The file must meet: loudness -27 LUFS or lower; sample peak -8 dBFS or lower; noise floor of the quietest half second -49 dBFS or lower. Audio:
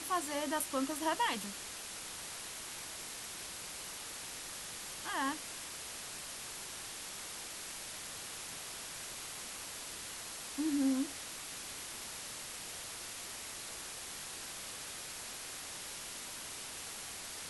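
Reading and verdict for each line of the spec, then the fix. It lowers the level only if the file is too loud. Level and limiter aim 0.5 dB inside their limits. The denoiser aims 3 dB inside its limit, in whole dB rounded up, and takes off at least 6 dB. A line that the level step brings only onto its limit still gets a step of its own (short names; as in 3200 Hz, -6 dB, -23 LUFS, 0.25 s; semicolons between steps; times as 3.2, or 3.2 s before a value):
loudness -40.0 LUFS: OK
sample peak -21.5 dBFS: OK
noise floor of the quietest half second -45 dBFS: fail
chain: denoiser 7 dB, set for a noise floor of -45 dBFS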